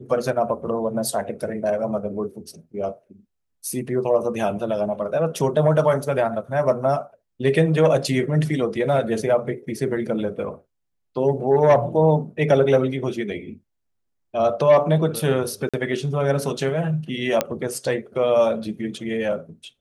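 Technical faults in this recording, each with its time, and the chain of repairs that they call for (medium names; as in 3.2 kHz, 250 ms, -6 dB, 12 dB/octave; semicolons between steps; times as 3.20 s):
15.69–15.74 s: dropout 46 ms
17.41 s: pop -5 dBFS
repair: de-click; interpolate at 15.69 s, 46 ms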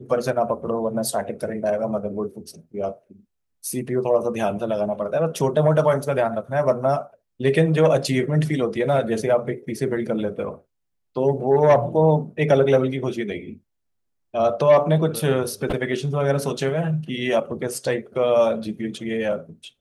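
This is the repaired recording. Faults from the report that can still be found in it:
nothing left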